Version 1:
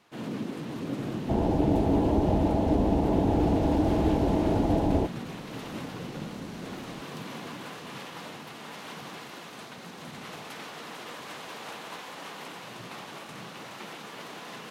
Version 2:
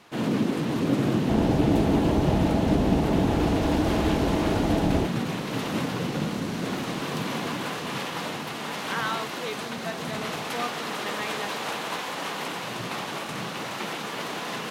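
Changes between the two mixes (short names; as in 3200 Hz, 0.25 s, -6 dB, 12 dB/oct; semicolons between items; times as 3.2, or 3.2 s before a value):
speech: unmuted; first sound +9.5 dB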